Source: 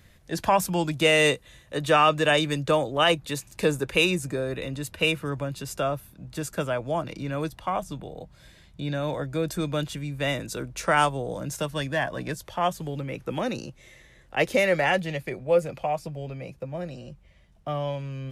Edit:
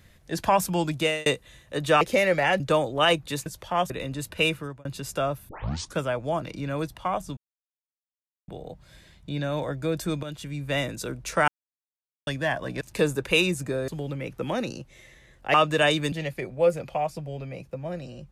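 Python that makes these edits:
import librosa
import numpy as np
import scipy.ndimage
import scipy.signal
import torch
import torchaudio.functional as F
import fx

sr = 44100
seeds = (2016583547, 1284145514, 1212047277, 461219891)

y = fx.edit(x, sr, fx.fade_out_span(start_s=0.95, length_s=0.31),
    fx.swap(start_s=2.01, length_s=0.58, other_s=14.42, other_length_s=0.59),
    fx.swap(start_s=3.45, length_s=1.07, other_s=12.32, other_length_s=0.44),
    fx.fade_out_span(start_s=5.14, length_s=0.33),
    fx.tape_start(start_s=6.11, length_s=0.49),
    fx.insert_silence(at_s=7.99, length_s=1.11),
    fx.fade_in_from(start_s=9.74, length_s=0.35, floor_db=-12.0),
    fx.silence(start_s=10.99, length_s=0.79), tone=tone)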